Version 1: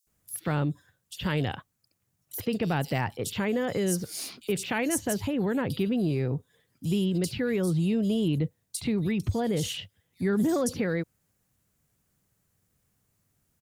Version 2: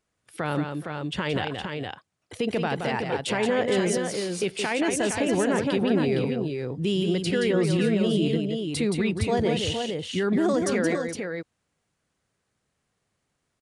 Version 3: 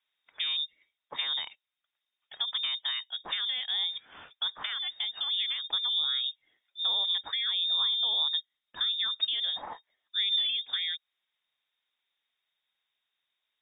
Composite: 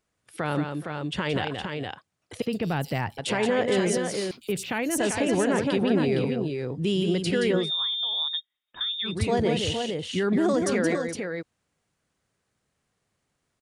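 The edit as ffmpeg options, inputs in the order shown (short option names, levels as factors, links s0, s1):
-filter_complex "[0:a]asplit=2[s0][s1];[1:a]asplit=4[s2][s3][s4][s5];[s2]atrim=end=2.422[s6];[s0]atrim=start=2.418:end=3.182[s7];[s3]atrim=start=3.178:end=4.312[s8];[s1]atrim=start=4.308:end=4.982[s9];[s4]atrim=start=4.978:end=7.71[s10];[2:a]atrim=start=7.55:end=9.18[s11];[s5]atrim=start=9.02[s12];[s6][s7]acrossfade=d=0.004:c1=hsin:c2=hsin[s13];[s13][s8]acrossfade=d=0.004:c1=hsin:c2=hsin[s14];[s14][s9]acrossfade=d=0.004:c1=hsin:c2=hsin[s15];[s15][s10]acrossfade=d=0.004:c1=hsin:c2=hsin[s16];[s16][s11]acrossfade=d=0.16:c1=tri:c2=tri[s17];[s17][s12]acrossfade=d=0.16:c1=tri:c2=tri"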